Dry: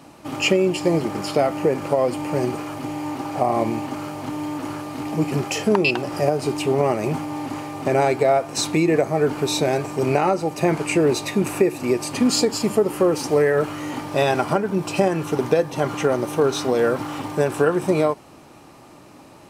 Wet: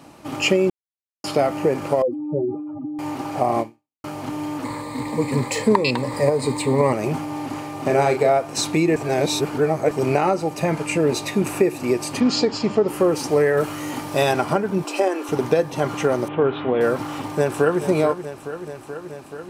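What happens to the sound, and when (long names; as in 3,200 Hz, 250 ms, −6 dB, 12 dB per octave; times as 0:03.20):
0:00.70–0:01.24: silence
0:02.02–0:02.99: expanding power law on the bin magnitudes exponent 2.8
0:03.60–0:04.04: fade out exponential
0:04.64–0:06.93: EQ curve with evenly spaced ripples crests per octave 0.99, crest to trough 14 dB
0:07.76–0:08.29: double-tracking delay 35 ms −7 dB
0:08.96–0:09.91: reverse
0:10.62–0:11.13: notch comb filter 370 Hz
0:12.20–0:12.88: low-pass filter 5,700 Hz 24 dB per octave
0:13.57–0:14.33: high-shelf EQ 6,800 Hz +9 dB
0:14.84–0:15.29: elliptic high-pass filter 260 Hz
0:16.28–0:16.81: Chebyshev low-pass filter 3,300 Hz, order 5
0:17.37–0:17.82: delay throw 430 ms, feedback 80%, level −11 dB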